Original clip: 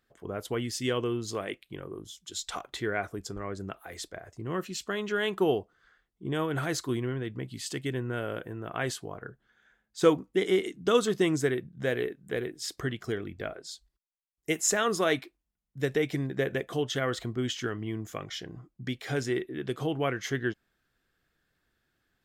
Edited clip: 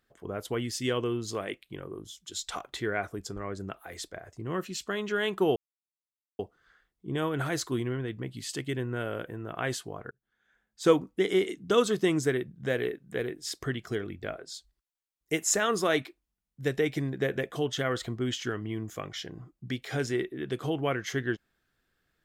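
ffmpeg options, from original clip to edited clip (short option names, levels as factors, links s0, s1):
-filter_complex "[0:a]asplit=3[s0][s1][s2];[s0]atrim=end=5.56,asetpts=PTS-STARTPTS,afade=t=out:st=5.556:d=0.004:c=hsin,apad=pad_dur=0.83[s3];[s1]atrim=start=5.56:end=9.28,asetpts=PTS-STARTPTS,afade=t=in:d=0.004:c=hsin,afade=t=out:st=3.716:d=0.004:c=hsin[s4];[s2]atrim=start=9.28,asetpts=PTS-STARTPTS,afade=t=in:d=0.75[s5];[s3][s4][s5]concat=n=3:v=0:a=1"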